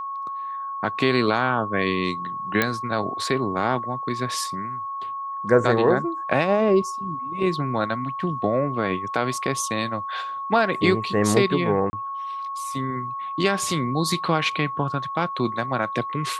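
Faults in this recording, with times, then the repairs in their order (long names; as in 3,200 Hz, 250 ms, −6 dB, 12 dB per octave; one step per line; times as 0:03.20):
whistle 1,100 Hz −28 dBFS
0:02.62: click −5 dBFS
0:11.90–0:11.93: drop-out 30 ms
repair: click removal
notch filter 1,100 Hz, Q 30
repair the gap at 0:11.90, 30 ms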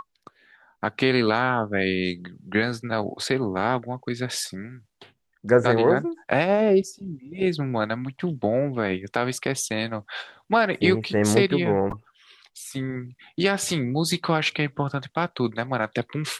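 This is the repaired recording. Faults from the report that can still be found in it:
none of them is left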